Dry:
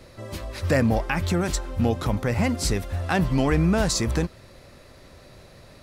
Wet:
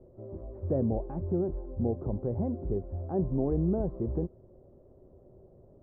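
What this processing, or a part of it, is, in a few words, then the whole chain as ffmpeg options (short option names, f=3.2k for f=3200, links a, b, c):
under water: -af "lowpass=f=690:w=0.5412,lowpass=f=690:w=1.3066,equalizer=f=380:t=o:w=0.27:g=9.5,volume=-8dB"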